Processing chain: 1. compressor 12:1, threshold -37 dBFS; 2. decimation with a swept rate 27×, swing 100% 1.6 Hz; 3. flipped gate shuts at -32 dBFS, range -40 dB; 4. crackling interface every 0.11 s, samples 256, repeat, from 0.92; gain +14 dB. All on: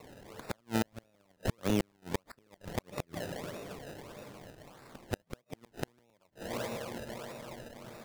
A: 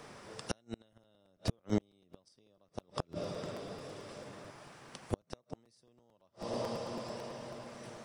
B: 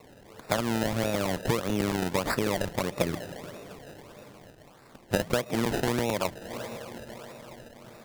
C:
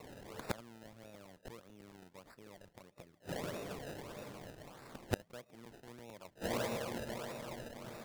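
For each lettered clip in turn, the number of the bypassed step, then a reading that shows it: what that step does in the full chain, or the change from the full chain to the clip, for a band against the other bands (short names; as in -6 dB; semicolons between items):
2, crest factor change +3.0 dB; 3, momentary loudness spread change +2 LU; 1, mean gain reduction 8.5 dB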